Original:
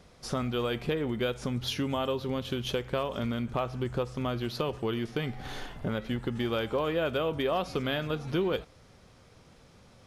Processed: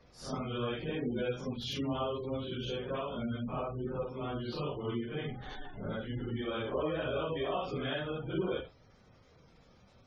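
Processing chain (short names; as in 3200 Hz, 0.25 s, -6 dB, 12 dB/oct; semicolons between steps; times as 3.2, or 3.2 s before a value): phase scrambler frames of 0.2 s; spectral gate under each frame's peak -25 dB strong; gain -4.5 dB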